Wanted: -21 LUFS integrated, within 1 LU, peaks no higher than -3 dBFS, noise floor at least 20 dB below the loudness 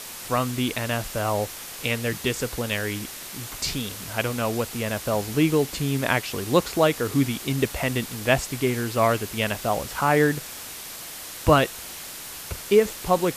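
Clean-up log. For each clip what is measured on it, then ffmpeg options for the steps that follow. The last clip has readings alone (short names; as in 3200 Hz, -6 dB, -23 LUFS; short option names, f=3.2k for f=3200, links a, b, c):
noise floor -38 dBFS; noise floor target -45 dBFS; loudness -25.0 LUFS; peak -5.0 dBFS; loudness target -21.0 LUFS
-> -af "afftdn=nr=7:nf=-38"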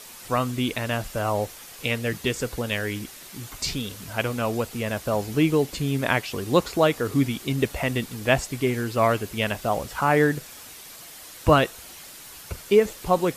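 noise floor -43 dBFS; noise floor target -45 dBFS
-> -af "afftdn=nr=6:nf=-43"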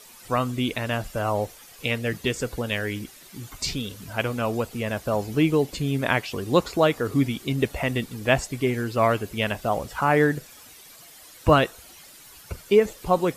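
noise floor -48 dBFS; loudness -25.0 LUFS; peak -5.0 dBFS; loudness target -21.0 LUFS
-> -af "volume=4dB,alimiter=limit=-3dB:level=0:latency=1"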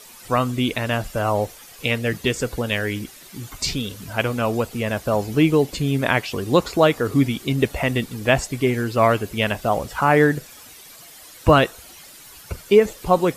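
loudness -21.0 LUFS; peak -3.0 dBFS; noise floor -44 dBFS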